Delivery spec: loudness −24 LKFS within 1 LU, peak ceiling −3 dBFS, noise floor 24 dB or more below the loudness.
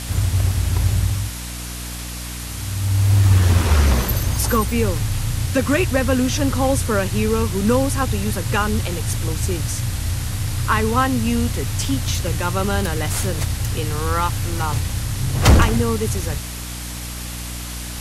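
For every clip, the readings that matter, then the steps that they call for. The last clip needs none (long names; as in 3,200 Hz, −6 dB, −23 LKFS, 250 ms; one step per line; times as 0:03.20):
mains hum 60 Hz; hum harmonics up to 300 Hz; level of the hum −29 dBFS; background noise floor −30 dBFS; target noise floor −45 dBFS; integrated loudness −20.5 LKFS; sample peak −2.0 dBFS; target loudness −24.0 LKFS
→ hum removal 60 Hz, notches 5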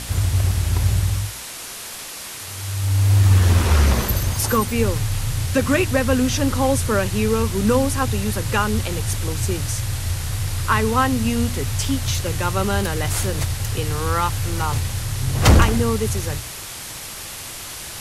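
mains hum none found; background noise floor −34 dBFS; target noise floor −45 dBFS
→ broadband denoise 11 dB, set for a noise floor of −34 dBFS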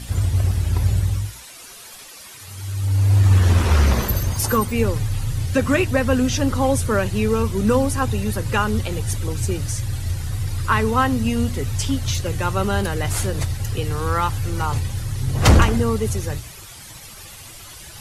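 background noise floor −40 dBFS; target noise floor −45 dBFS
→ broadband denoise 6 dB, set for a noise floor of −40 dBFS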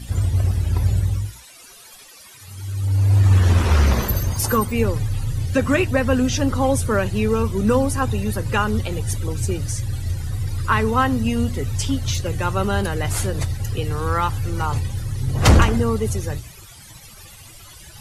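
background noise floor −44 dBFS; target noise floor −45 dBFS
→ broadband denoise 6 dB, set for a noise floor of −44 dBFS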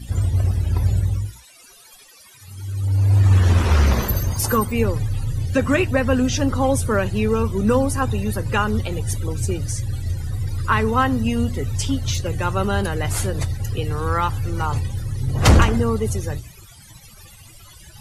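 background noise floor −47 dBFS; integrated loudness −20.5 LKFS; sample peak −2.5 dBFS; target loudness −24.0 LKFS
→ level −3.5 dB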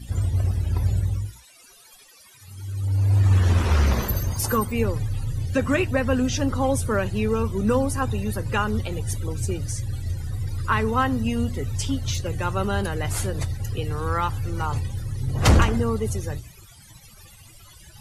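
integrated loudness −24.0 LKFS; sample peak −6.0 dBFS; background noise floor −50 dBFS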